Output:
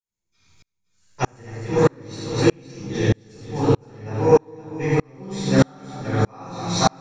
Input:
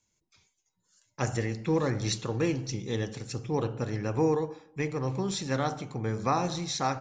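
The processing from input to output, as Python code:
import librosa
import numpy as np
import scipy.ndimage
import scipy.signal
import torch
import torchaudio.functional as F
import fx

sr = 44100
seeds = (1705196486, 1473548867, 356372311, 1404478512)

p1 = x + fx.echo_multitap(x, sr, ms=(75, 255, 517), db=(-5.0, -6.0, -7.0), dry=0)
p2 = fx.room_shoebox(p1, sr, seeds[0], volume_m3=220.0, walls='mixed', distance_m=4.6)
y = fx.tremolo_decay(p2, sr, direction='swelling', hz=1.6, depth_db=37)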